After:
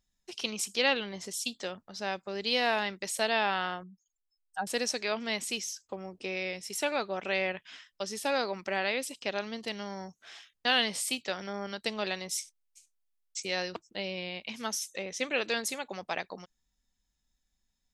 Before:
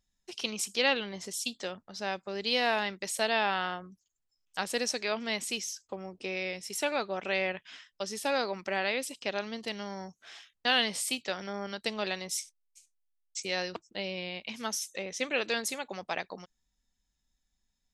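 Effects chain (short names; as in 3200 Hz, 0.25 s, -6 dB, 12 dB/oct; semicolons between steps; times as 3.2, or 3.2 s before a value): 3.83–4.67 spectral contrast raised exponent 2.6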